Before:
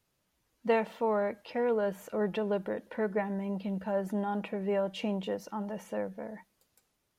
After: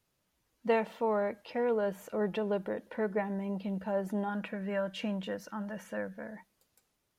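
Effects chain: 4.29–6.35 s: graphic EQ with 31 bands 400 Hz -9 dB, 800 Hz -7 dB, 1.6 kHz +11 dB; trim -1 dB

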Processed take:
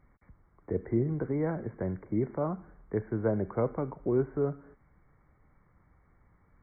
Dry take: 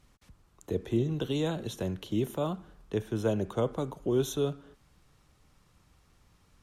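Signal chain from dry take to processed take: brick-wall FIR low-pass 2.3 kHz

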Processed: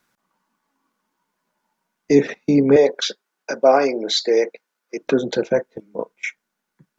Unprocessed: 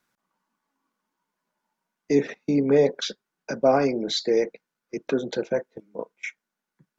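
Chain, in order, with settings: 2.76–5.02 s: high-pass 380 Hz 12 dB/octave; trim +6.5 dB

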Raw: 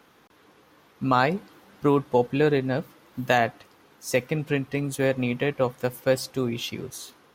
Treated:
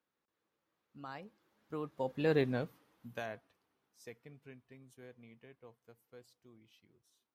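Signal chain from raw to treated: Doppler pass-by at 2.42 s, 23 m/s, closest 3.6 m; trim -7 dB

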